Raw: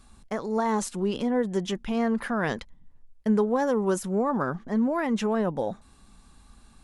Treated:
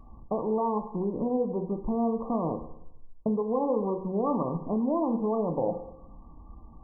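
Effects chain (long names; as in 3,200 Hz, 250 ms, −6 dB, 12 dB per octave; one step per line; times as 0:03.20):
downward compressor, threshold −30 dBFS, peak gain reduction 11 dB
linear-phase brick-wall low-pass 1,200 Hz
convolution reverb RT60 0.80 s, pre-delay 3 ms, DRR 4.5 dB
level +5 dB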